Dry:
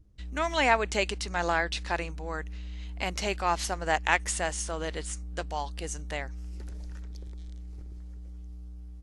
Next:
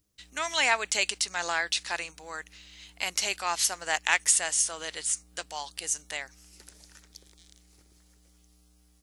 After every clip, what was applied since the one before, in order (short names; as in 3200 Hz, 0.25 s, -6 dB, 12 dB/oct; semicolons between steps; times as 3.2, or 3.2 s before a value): tilt +4.5 dB/oct; gain -3 dB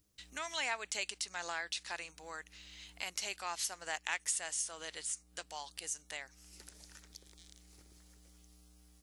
compressor 1.5:1, threshold -55 dBFS, peak gain reduction 13 dB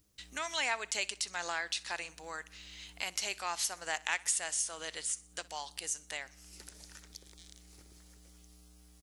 feedback echo 62 ms, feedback 52%, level -22 dB; gain +3.5 dB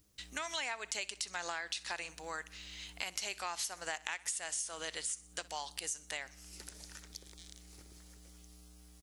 compressor 6:1, threshold -36 dBFS, peak gain reduction 9.5 dB; gain +1.5 dB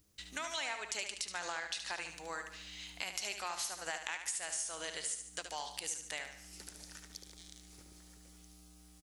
feedback echo 73 ms, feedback 47%, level -8 dB; gain -1 dB